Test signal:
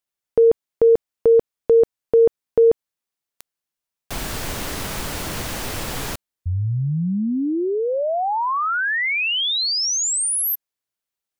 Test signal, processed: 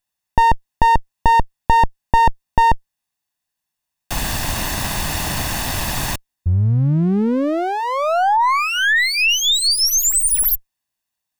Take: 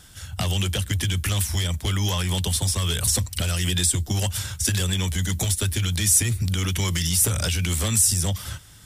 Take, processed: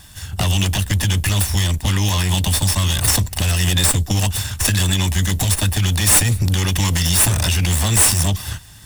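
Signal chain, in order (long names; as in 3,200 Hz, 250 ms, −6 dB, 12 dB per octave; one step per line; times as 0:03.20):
lower of the sound and its delayed copy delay 1.1 ms
level +7 dB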